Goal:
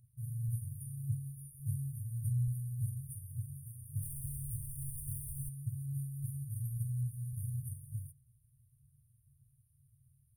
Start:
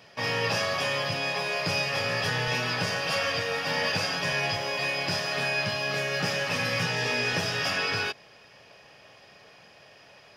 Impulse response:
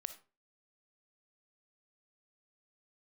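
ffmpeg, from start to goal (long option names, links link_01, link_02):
-filter_complex "[0:a]aphaser=in_gain=1:out_gain=1:delay=2.2:decay=0.33:speed=1.7:type=sinusoidal,asplit=3[link_01][link_02][link_03];[link_01]afade=type=out:start_time=4.01:duration=0.02[link_04];[link_02]asplit=2[link_05][link_06];[link_06]highpass=frequency=720:poles=1,volume=27dB,asoftclip=type=tanh:threshold=-15dB[link_07];[link_05][link_07]amix=inputs=2:normalize=0,lowpass=frequency=2500:poles=1,volume=-6dB,afade=type=in:start_time=4.01:duration=0.02,afade=type=out:start_time=5.48:duration=0.02[link_08];[link_03]afade=type=in:start_time=5.48:duration=0.02[link_09];[link_04][link_08][link_09]amix=inputs=3:normalize=0,afftfilt=real='re*(1-between(b*sr/4096,140,8700))':imag='im*(1-between(b*sr/4096,140,8700))':win_size=4096:overlap=0.75"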